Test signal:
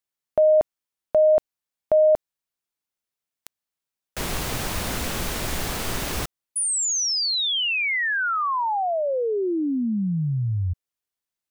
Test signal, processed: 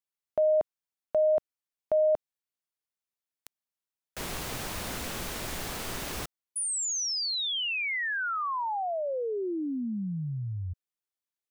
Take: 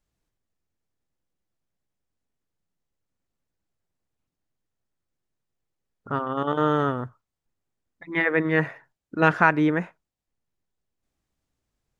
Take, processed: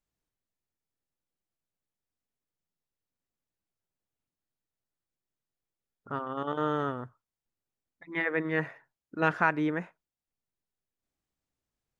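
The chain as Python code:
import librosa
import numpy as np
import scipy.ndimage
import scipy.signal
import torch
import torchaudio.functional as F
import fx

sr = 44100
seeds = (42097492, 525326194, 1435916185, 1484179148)

y = fx.low_shelf(x, sr, hz=140.0, db=-4.5)
y = F.gain(torch.from_numpy(y), -7.0).numpy()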